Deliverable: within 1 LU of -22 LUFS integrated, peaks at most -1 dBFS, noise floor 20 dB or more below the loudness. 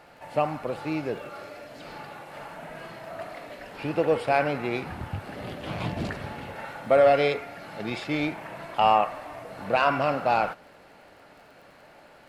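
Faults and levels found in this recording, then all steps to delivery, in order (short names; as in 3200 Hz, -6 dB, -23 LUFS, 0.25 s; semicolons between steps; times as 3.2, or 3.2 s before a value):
ticks 37/s; loudness -26.5 LUFS; peak -9.5 dBFS; loudness target -22.0 LUFS
-> de-click; gain +4.5 dB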